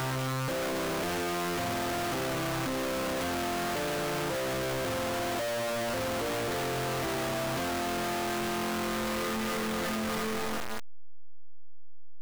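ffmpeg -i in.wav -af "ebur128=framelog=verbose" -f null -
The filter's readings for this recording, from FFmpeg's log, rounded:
Integrated loudness:
  I:         -31.4 LUFS
  Threshold: -41.4 LUFS
Loudness range:
  LRA:         1.5 LU
  Threshold: -51.5 LUFS
  LRA low:   -32.7 LUFS
  LRA high:  -31.2 LUFS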